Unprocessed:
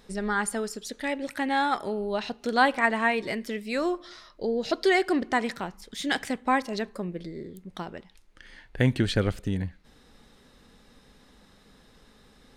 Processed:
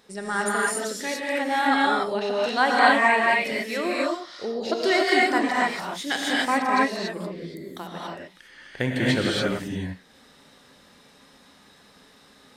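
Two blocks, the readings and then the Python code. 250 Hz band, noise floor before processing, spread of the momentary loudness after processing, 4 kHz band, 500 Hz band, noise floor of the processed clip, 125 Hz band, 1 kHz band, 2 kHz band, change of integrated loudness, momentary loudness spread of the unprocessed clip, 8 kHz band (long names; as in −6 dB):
+2.0 dB, −58 dBFS, 17 LU, +6.5 dB, +3.5 dB, −55 dBFS, −3.0 dB, +5.5 dB, +6.0 dB, +4.5 dB, 16 LU, +6.0 dB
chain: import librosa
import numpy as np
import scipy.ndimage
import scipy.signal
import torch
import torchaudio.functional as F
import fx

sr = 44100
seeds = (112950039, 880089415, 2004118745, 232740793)

y = fx.highpass(x, sr, hz=310.0, slope=6)
y = fx.rev_gated(y, sr, seeds[0], gate_ms=310, shape='rising', drr_db=-5.0)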